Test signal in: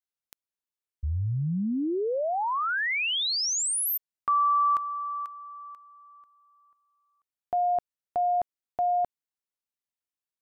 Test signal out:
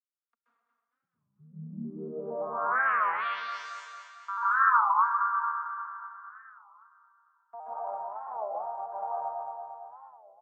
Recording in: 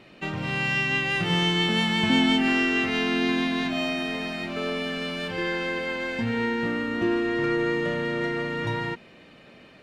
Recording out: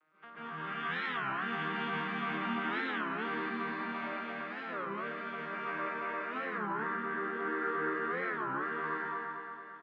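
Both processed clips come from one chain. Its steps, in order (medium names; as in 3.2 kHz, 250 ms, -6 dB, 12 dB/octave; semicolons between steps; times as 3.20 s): vocoder on a broken chord major triad, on D#3, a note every 115 ms; in parallel at +2.5 dB: peak limiter -20.5 dBFS; on the sum: band-pass filter 1.3 kHz, Q 4.9; feedback delay 226 ms, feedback 58%, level -7 dB; plate-style reverb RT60 1.4 s, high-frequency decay 0.8×, pre-delay 120 ms, DRR -10 dB; warped record 33 1/3 rpm, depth 250 cents; trim -8.5 dB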